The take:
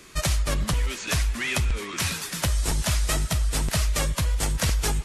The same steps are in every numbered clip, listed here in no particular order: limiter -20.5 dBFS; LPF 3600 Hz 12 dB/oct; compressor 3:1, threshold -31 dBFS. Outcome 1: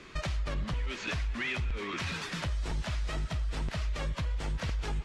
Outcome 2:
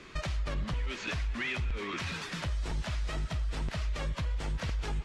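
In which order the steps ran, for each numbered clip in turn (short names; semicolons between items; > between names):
limiter > LPF > compressor; limiter > compressor > LPF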